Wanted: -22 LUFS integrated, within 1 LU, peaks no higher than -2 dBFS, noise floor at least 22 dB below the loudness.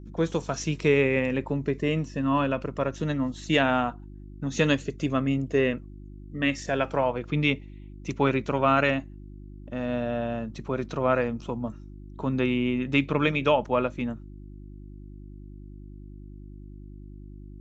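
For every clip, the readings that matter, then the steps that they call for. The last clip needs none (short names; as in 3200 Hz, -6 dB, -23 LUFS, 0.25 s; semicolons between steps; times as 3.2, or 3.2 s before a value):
hum 50 Hz; harmonics up to 350 Hz; hum level -41 dBFS; loudness -26.5 LUFS; peak -7.5 dBFS; loudness target -22.0 LUFS
-> de-hum 50 Hz, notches 7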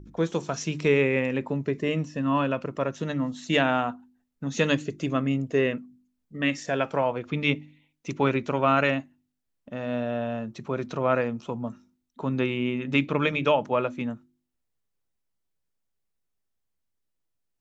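hum none; loudness -26.5 LUFS; peak -8.5 dBFS; loudness target -22.0 LUFS
-> gain +4.5 dB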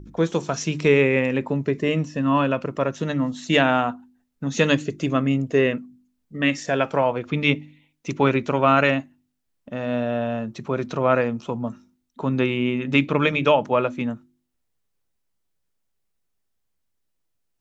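loudness -22.0 LUFS; peak -4.0 dBFS; noise floor -74 dBFS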